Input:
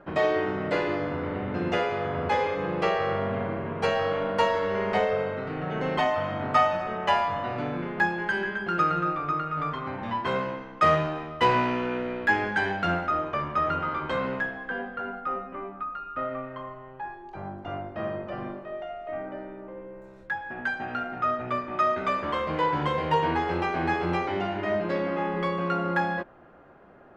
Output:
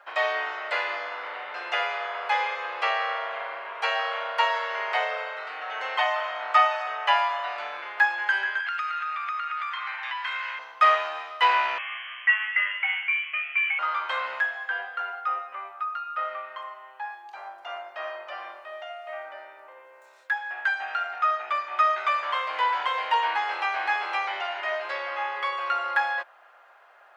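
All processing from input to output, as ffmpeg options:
ffmpeg -i in.wav -filter_complex "[0:a]asettb=1/sr,asplit=3[link_01][link_02][link_03];[link_01]atrim=end=8.604[link_04];[link_02]atrim=start=8.6:end=10.59,asetpts=PTS-STARTPTS,afade=type=in:duration=0.004:curve=qsin,afade=type=out:start_time=1.986:duration=0.004:curve=qsin,highpass=1200,equalizer=frequency=2100:width=0.94:gain=7.5,acompressor=threshold=-31dB:ratio=5:attack=3.2:release=140:knee=1:detection=peak[link_05];[link_03]atrim=start=10.586[link_06];[link_04][link_05]acrossfade=duration=0.004:curve1=hsin:curve2=qsin[link_07];[link_07][link_06]acrossfade=duration=0.004:curve1=qsin:curve2=hsin,asettb=1/sr,asplit=3[link_08][link_09][link_10];[link_08]atrim=end=11.784[link_11];[link_09]atrim=start=11.78:end=13.79,asetpts=PTS-STARTPTS,afade=type=in:duration=0.004:curve=qsin,afade=type=out:start_time=2.006:duration=0.004:curve=qsin,highpass=1400,lowpass=frequency=3100:width_type=q:width=0.5098,lowpass=frequency=3100:width_type=q:width=0.6013,lowpass=frequency=3100:width_type=q:width=0.9,lowpass=frequency=3100:width_type=q:width=2.563,afreqshift=-3600[link_12];[link_10]atrim=start=13.786[link_13];[link_11][link_12]acrossfade=duration=0.004:curve1=hsin:curve2=qsin[link_14];[link_14][link_13]acrossfade=duration=0.004:curve1=qsin:curve2=hsin,acrossover=split=3500[link_15][link_16];[link_16]acompressor=threshold=-59dB:ratio=4:attack=1:release=60[link_17];[link_15][link_17]amix=inputs=2:normalize=0,highpass=frequency=700:width=0.5412,highpass=frequency=700:width=1.3066,highshelf=frequency=2000:gain=11.5" out.wav

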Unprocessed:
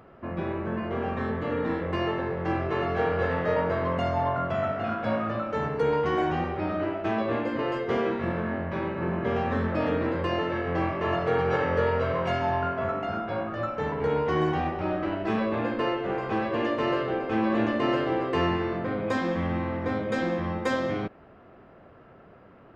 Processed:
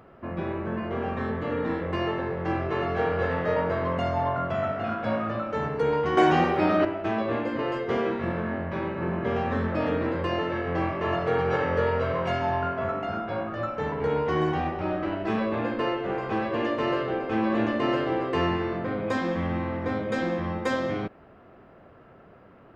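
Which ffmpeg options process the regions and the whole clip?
ffmpeg -i in.wav -filter_complex "[0:a]asettb=1/sr,asplit=3[link_01][link_02][link_03];[link_01]atrim=end=6.174[link_04];[link_02]atrim=start=6.17:end=6.85,asetpts=PTS-STARTPTS,afade=type=in:duration=0.004:curve=qsin,afade=type=out:start_time=0.676:duration=0.004:curve=qsin,highpass=150,highshelf=frequency=5600:gain=10.5,acontrast=88[link_05];[link_03]atrim=start=6.846[link_06];[link_04][link_05]acrossfade=duration=0.004:curve1=hsin:curve2=qsin[link_07];[link_07][link_06]acrossfade=duration=0.004:curve1=qsin:curve2=hsin" out.wav

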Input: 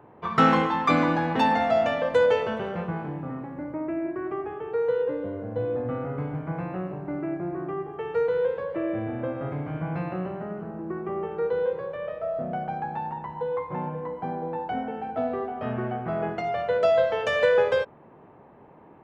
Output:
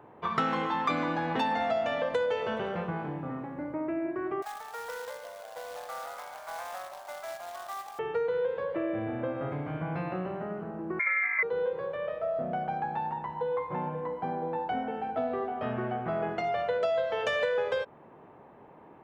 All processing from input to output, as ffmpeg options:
ffmpeg -i in.wav -filter_complex "[0:a]asettb=1/sr,asplit=3[link_01][link_02][link_03];[link_01]atrim=end=4.424[link_04];[link_02]atrim=start=4.42:end=7.99,asetpts=PTS-STARTPTS,afade=type=in:duration=0.004:curve=qsin,afade=type=out:start_time=3.566:duration=0.004:curve=qsin,asuperpass=centerf=1200:order=12:qfactor=0.66,acrusher=bits=2:mode=log:mix=0:aa=0.000001[link_05];[link_03]atrim=start=7.986[link_06];[link_04][link_05]acrossfade=duration=0.004:curve1=hsin:curve2=qsin[link_07];[link_07][link_06]acrossfade=duration=0.004:curve1=qsin:curve2=hsin,asettb=1/sr,asplit=3[link_08][link_09][link_10];[link_08]atrim=end=10.994[link_11];[link_09]atrim=start=10.99:end=11.43,asetpts=PTS-STARTPTS,afade=type=in:duration=0.004:curve=qsin,afade=type=out:start_time=0.436:duration=0.004:curve=qsin,acontrast=80,lowpass=frequency=2100:width_type=q:width=0.5098,lowpass=frequency=2100:width_type=q:width=0.6013,lowpass=frequency=2100:width_type=q:width=0.9,lowpass=frequency=2100:width_type=q:width=2.563,afreqshift=-2500[link_12];[link_10]atrim=start=11.426[link_13];[link_11][link_12]acrossfade=duration=0.004:curve1=hsin:curve2=qsin[link_14];[link_14][link_13]acrossfade=duration=0.004:curve1=qsin:curve2=hsin,equalizer=frequency=3500:width=4.1:gain=2.5,acompressor=threshold=-25dB:ratio=5,lowshelf=frequency=280:gain=-5" out.wav

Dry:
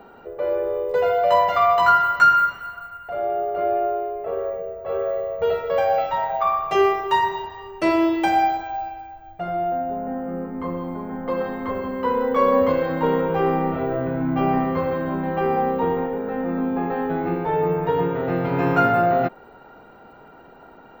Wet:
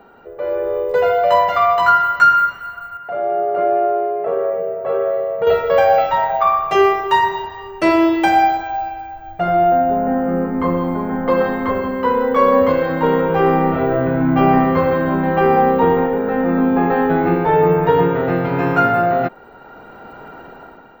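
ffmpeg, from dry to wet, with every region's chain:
ffmpeg -i in.wav -filter_complex "[0:a]asettb=1/sr,asplit=3[link_01][link_02][link_03];[link_01]atrim=end=2.974[link_04];[link_02]atrim=start=2.97:end=5.47,asetpts=PTS-STARTPTS,afade=type=in:duration=0.004:curve=qsin,afade=type=out:start_time=2.496:duration=0.004:curve=qsin,highpass=frequency=120:width=0.5412,highpass=frequency=120:width=1.3066,highshelf=frequency=2900:gain=-9,acompressor=threshold=-30dB:ratio=1.5:attack=3.2:release=140:knee=1:detection=peak[link_05];[link_03]atrim=start=5.466[link_06];[link_04][link_05]acrossfade=duration=0.004:curve1=hsin:curve2=qsin[link_07];[link_07][link_06]acrossfade=duration=0.004:curve1=qsin:curve2=hsin,equalizer=frequency=1600:width_type=o:width=0.77:gain=2.5,dynaudnorm=framelen=260:gausssize=5:maxgain=11.5dB,volume=-1dB" out.wav

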